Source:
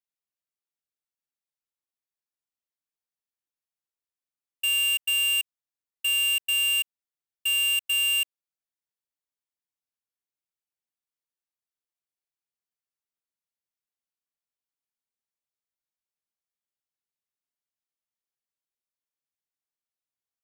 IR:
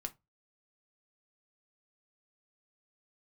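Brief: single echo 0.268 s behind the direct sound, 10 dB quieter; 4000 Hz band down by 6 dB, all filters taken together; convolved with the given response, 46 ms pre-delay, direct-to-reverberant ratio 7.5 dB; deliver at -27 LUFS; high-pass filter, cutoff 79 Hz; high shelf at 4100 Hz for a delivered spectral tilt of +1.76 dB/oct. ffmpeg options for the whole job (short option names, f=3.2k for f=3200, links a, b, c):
-filter_complex "[0:a]highpass=79,equalizer=f=4k:t=o:g=-8,highshelf=f=4.1k:g=-6.5,aecho=1:1:268:0.316,asplit=2[a][b];[1:a]atrim=start_sample=2205,adelay=46[c];[b][c]afir=irnorm=-1:irlink=0,volume=-5.5dB[d];[a][d]amix=inputs=2:normalize=0,volume=3dB"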